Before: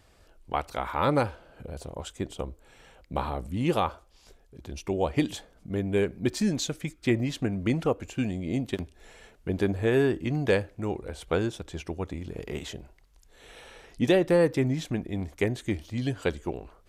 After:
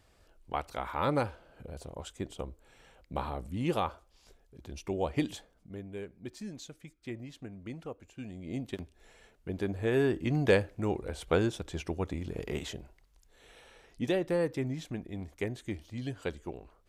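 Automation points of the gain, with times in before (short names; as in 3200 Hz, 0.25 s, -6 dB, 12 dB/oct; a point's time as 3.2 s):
5.29 s -5 dB
5.94 s -16 dB
8.14 s -16 dB
8.57 s -7.5 dB
9.63 s -7.5 dB
10.39 s -0.5 dB
12.51 s -0.5 dB
13.63 s -8 dB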